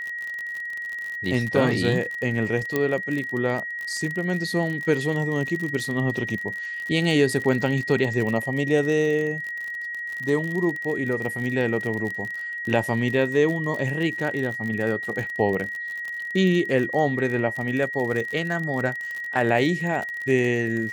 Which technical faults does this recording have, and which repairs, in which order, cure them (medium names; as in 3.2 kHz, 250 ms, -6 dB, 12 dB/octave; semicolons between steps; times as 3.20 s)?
crackle 47 per s -28 dBFS
whine 1.9 kHz -29 dBFS
2.76 s: pop -10 dBFS
7.44 s: dropout 4.9 ms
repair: de-click; band-stop 1.9 kHz, Q 30; interpolate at 7.44 s, 4.9 ms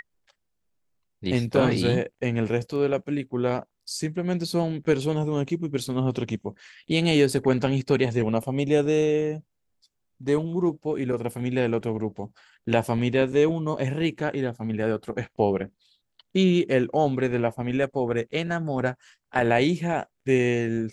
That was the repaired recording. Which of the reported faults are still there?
2.76 s: pop